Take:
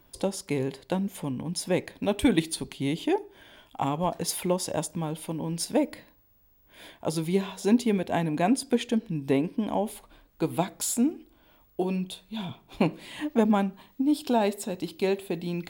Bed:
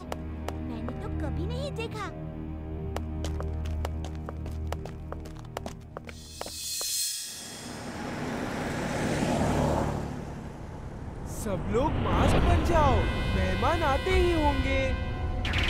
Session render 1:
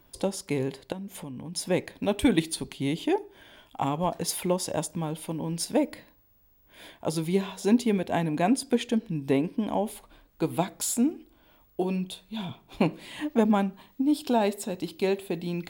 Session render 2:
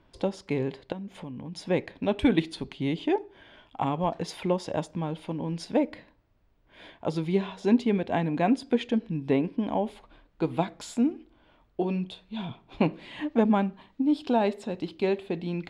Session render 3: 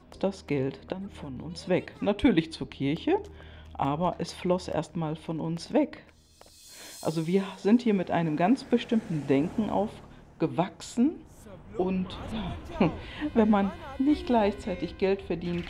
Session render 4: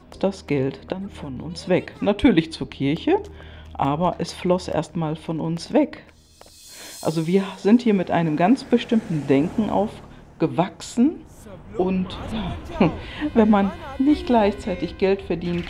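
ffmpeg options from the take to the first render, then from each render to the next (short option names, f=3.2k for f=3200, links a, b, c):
-filter_complex "[0:a]asettb=1/sr,asplit=3[a][b][c];[a]atrim=end=0.924[d];[b]atrim=start=0.92:end=1.55,asetpts=PTS-STARTPTS,afade=t=in:d=0.004:c=qsin,afade=t=out:st=0.626:d=0.004:c=qsin,acompressor=threshold=-35dB:ratio=6:attack=3.2:release=140:knee=1:detection=peak[e];[c]atrim=start=1.546[f];[d][e]acrossfade=d=0.004:c1=hsin:c2=qsin[g];[g][f]acrossfade=d=0.004:c1=qsin:c2=hsin"
-af "lowpass=3.6k"
-filter_complex "[1:a]volume=-16dB[a];[0:a][a]amix=inputs=2:normalize=0"
-af "volume=6.5dB"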